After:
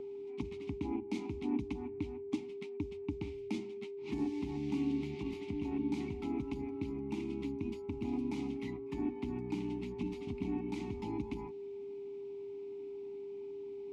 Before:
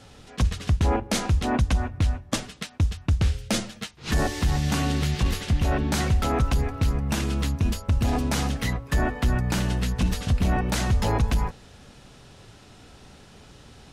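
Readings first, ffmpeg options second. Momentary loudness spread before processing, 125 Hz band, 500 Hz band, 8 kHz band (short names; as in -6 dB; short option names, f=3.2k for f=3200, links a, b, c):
4 LU, -21.5 dB, -6.5 dB, under -25 dB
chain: -filter_complex "[0:a]asplit=3[a][b][c];[a]bandpass=f=300:t=q:w=8,volume=0dB[d];[b]bandpass=f=870:t=q:w=8,volume=-6dB[e];[c]bandpass=f=2.24k:t=q:w=8,volume=-9dB[f];[d][e][f]amix=inputs=3:normalize=0,aeval=exprs='val(0)+0.00891*sin(2*PI*400*n/s)':c=same,acrossover=split=350|3000[g][h][i];[h]acompressor=threshold=-52dB:ratio=4[j];[g][j][i]amix=inputs=3:normalize=0,volume=2.5dB"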